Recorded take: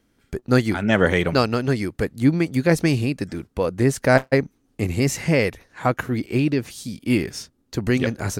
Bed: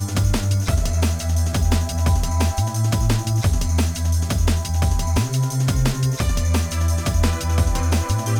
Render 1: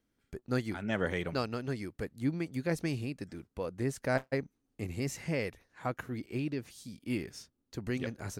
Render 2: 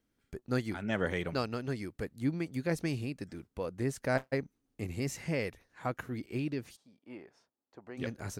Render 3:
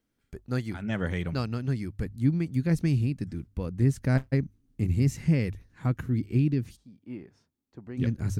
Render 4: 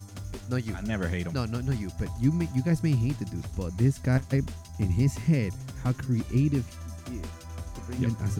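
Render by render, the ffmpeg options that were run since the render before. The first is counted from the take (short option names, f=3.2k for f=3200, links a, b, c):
-af "volume=-14.5dB"
-filter_complex "[0:a]asplit=3[a][b][c];[a]afade=t=out:st=6.75:d=0.02[d];[b]bandpass=f=790:t=q:w=1.8,afade=t=in:st=6.75:d=0.02,afade=t=out:st=7.97:d=0.02[e];[c]afade=t=in:st=7.97:d=0.02[f];[d][e][f]amix=inputs=3:normalize=0"
-af "bandreject=f=50:t=h:w=6,bandreject=f=100:t=h:w=6,asubboost=boost=8:cutoff=220"
-filter_complex "[1:a]volume=-20dB[a];[0:a][a]amix=inputs=2:normalize=0"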